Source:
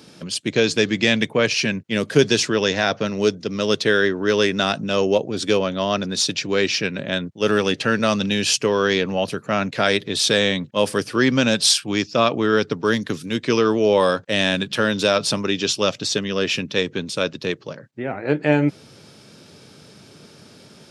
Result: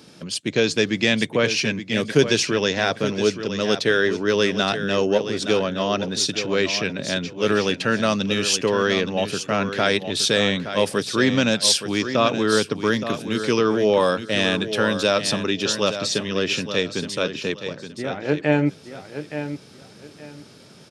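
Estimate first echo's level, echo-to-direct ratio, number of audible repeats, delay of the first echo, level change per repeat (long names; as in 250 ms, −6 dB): −10.0 dB, −9.5 dB, 3, 870 ms, −12.5 dB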